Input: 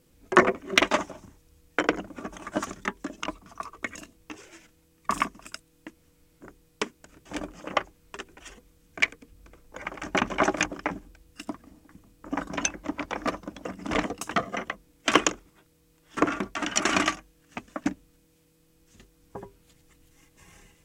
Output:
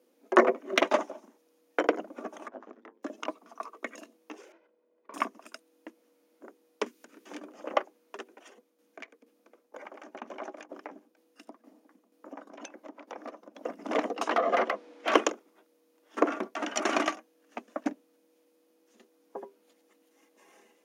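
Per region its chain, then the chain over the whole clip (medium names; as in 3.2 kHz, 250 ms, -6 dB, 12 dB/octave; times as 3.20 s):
2.48–3.03 s: compression 16:1, threshold -34 dBFS + ring modulator 53 Hz + tape spacing loss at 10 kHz 34 dB
4.52–5.14 s: comb filter that takes the minimum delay 2 ms + compression 2:1, threshold -45 dBFS + tape spacing loss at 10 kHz 44 dB
6.86–7.47 s: peaking EQ 660 Hz -11 dB 1.2 oct + three bands compressed up and down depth 70%
8.31–13.61 s: compression 2.5:1, threshold -38 dBFS + tremolo saw down 2.1 Hz, depth 60%
14.16–15.14 s: distance through air 81 m + compression 10:1, threshold -30 dBFS + overdrive pedal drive 26 dB, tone 3.1 kHz, clips at -11.5 dBFS
whole clip: elliptic high-pass 220 Hz, stop band 40 dB; peaking EQ 570 Hz +9.5 dB 1.8 oct; band-stop 7.8 kHz, Q 6.5; trim -7 dB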